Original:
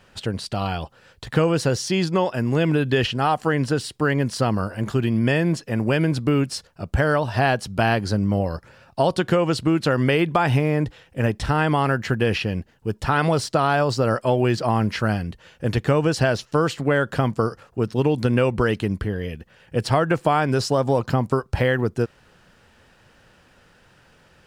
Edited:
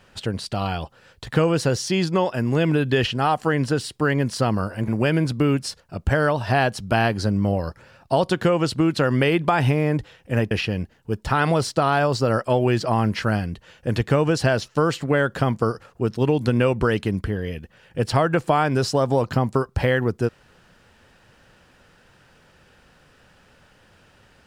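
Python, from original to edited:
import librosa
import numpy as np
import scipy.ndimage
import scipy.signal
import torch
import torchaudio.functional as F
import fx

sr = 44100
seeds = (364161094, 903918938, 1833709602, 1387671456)

y = fx.edit(x, sr, fx.cut(start_s=4.88, length_s=0.87),
    fx.cut(start_s=11.38, length_s=0.9), tone=tone)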